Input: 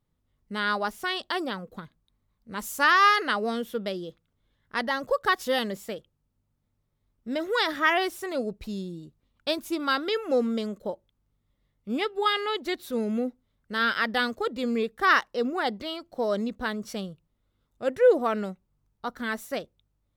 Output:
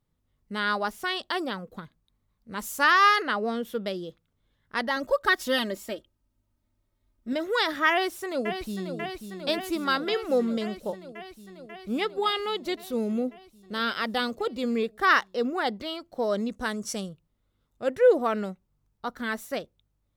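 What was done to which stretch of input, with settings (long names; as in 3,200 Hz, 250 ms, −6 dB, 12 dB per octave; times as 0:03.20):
0:03.22–0:03.65: high-shelf EQ 3,700 Hz −8.5 dB
0:04.96–0:07.33: comb filter 3.2 ms
0:07.91–0:08.96: delay throw 540 ms, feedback 80%, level −7.5 dB
0:12.21–0:14.62: parametric band 1,700 Hz −7 dB 0.6 octaves
0:16.50–0:17.09: flat-topped bell 7,700 Hz +10.5 dB 1.2 octaves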